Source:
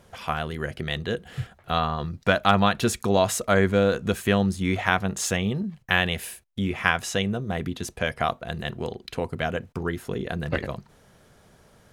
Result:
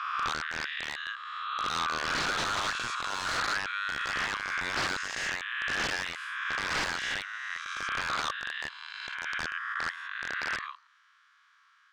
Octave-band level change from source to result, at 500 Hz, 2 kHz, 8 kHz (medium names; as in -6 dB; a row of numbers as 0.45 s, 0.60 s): -18.5 dB, -1.5 dB, -6.5 dB